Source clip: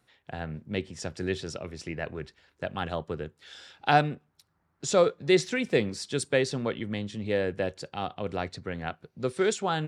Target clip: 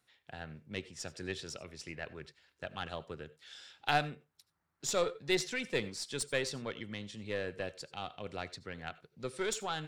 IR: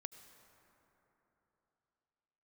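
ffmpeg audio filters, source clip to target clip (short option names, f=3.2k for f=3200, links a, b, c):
-filter_complex "[0:a]tiltshelf=f=1.3k:g=-4.5,aeval=exprs='0.447*(cos(1*acos(clip(val(0)/0.447,-1,1)))-cos(1*PI/2))+0.02*(cos(8*acos(clip(val(0)/0.447,-1,1)))-cos(8*PI/2))':c=same[a];[1:a]atrim=start_sample=2205,atrim=end_sample=4410[b];[a][b]afir=irnorm=-1:irlink=0,volume=-2dB"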